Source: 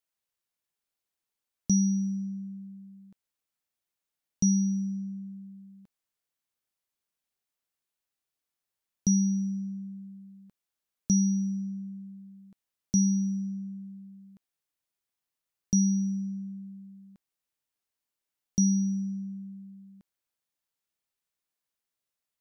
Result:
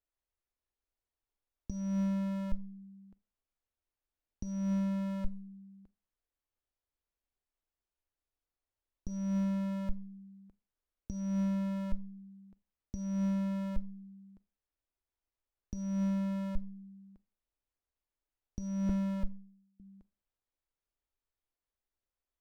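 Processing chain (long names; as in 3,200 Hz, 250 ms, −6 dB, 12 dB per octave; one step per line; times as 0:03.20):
0:18.89–0:19.80: downward expander −32 dBFS
in parallel at −4 dB: comparator with hysteresis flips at −36.5 dBFS
on the sum: spectral tilt −4 dB per octave
compressor whose output falls as the input rises −16 dBFS, ratio −0.5
parametric band 160 Hz −14.5 dB 1.2 octaves
four-comb reverb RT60 0.33 s, combs from 30 ms, DRR 19.5 dB
level −5 dB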